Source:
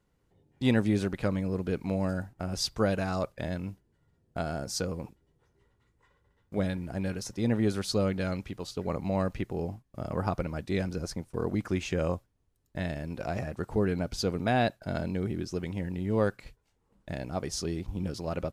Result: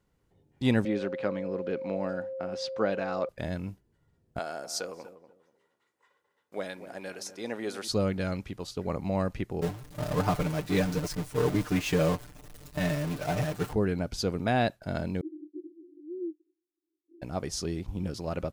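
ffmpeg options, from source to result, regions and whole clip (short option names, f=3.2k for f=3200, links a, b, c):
-filter_complex "[0:a]asettb=1/sr,asplit=3[a][b][c];[a]atrim=end=0.854[d];[b]atrim=start=0.85:end=3.29,asetpts=PTS-STARTPTS,afade=t=in:d=0.004:c=qsin,afade=t=out:st=2.436:d=0.004:c=qsin,highpass=250,lowpass=3.6k,aeval=exprs='val(0)+0.02*sin(2*PI*530*n/s)':c=same[e];[c]atrim=start=3.286[f];[d][e]acrossfade=d=0.004:c1=hsin:c2=qsin[g];[g][f]acrossfade=d=0.004:c1=qsin:c2=hsin,asettb=1/sr,asplit=3[h][i][j];[h]atrim=end=4.394[k];[i]atrim=start=4.39:end=7.88,asetpts=PTS-STARTPTS,afade=t=in:d=0.004:c=qsin,afade=t=out:st=3.486:d=0.004:c=qsin,highpass=460,asplit=2[l][m];[m]adelay=242,lowpass=f=960:p=1,volume=-11dB,asplit=2[n][o];[o]adelay=242,lowpass=f=960:p=1,volume=0.26,asplit=2[p][q];[q]adelay=242,lowpass=f=960:p=1,volume=0.26[r];[l][n][p][r]amix=inputs=4:normalize=0,atrim=end_sample=153909[s];[j]atrim=start=7.876[t];[k][s]acrossfade=d=0.004:c1=hsin:c2=qsin[u];[u][t]acrossfade=d=0.004:c1=qsin:c2=hsin,asettb=1/sr,asplit=3[v][w][x];[v]atrim=end=9.614[y];[w]atrim=start=9.61:end=13.73,asetpts=PTS-STARTPTS,afade=t=in:d=0.004:c=qsin,afade=t=out:st=4.116:d=0.004:c=qsin,aeval=exprs='val(0)+0.5*0.0316*sgn(val(0))':c=same,aecho=1:1:6.7:0.83,atrim=end_sample=181692,agate=range=-33dB:threshold=-25dB:ratio=3:release=100:detection=peak[z];[x]atrim=start=13.726[aa];[y][z]acrossfade=d=0.004:c1=hsin:c2=qsin[ab];[ab][aa]acrossfade=d=0.004:c1=qsin:c2=hsin,asettb=1/sr,asplit=3[ac][ad][ae];[ac]atrim=end=15.214[af];[ad]atrim=start=15.21:end=17.22,asetpts=PTS-STARTPTS,afade=t=in:d=0.004:c=qsin,afade=t=out:st=2.006:d=0.004:c=qsin,afreqshift=-72,asuperpass=centerf=330:order=8:qfactor=5.1[ag];[ae]atrim=start=17.216[ah];[af][ag]acrossfade=d=0.004:c1=hsin:c2=qsin[ai];[ai][ah]acrossfade=d=0.004:c1=qsin:c2=hsin"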